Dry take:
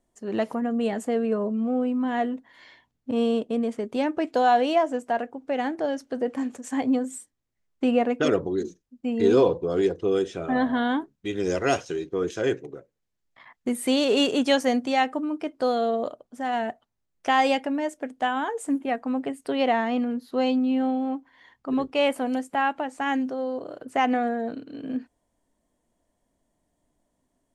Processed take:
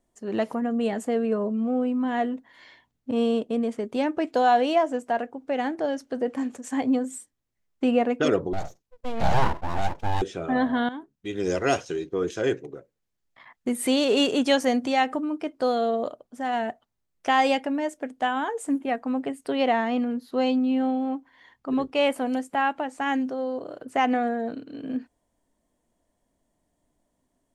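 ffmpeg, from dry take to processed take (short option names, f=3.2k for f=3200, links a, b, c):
-filter_complex "[0:a]asettb=1/sr,asplit=3[a][b][c];[a]atrim=end=8.534[d];[b]atrim=start=8.53:end=10.22,asetpts=PTS-STARTPTS,afade=t=in:d=0.004:c=qsin,afade=t=out:st=1.686:d=0.004:c=qsin,aeval=exprs='abs(val(0))':c=same[e];[c]atrim=start=10.216[f];[d][e]acrossfade=d=0.004:c1=hsin:c2=qsin[g];[g][f]acrossfade=d=0.004:c1=qsin:c2=hsin,asplit=3[h][i][j];[h]afade=t=out:st=13.79:d=0.02[k];[i]acompressor=mode=upward:threshold=-23dB:ratio=2.5:attack=3.2:release=140:knee=2.83:detection=peak,afade=t=in:st=13.79:d=0.02,afade=t=out:st=15.18:d=0.02[l];[j]afade=t=in:st=15.18:d=0.02[m];[k][l][m]amix=inputs=3:normalize=0,asplit=2[n][o];[n]atrim=end=10.89,asetpts=PTS-STARTPTS,afade=t=out:st=10.886:d=0.004:c=hsin:silence=0.188365[p];[o]atrim=start=10.89,asetpts=PTS-STARTPTS,afade=t=in:d=0.59:silence=0.188365[q];[p][q]concat=n=2:v=0:a=1"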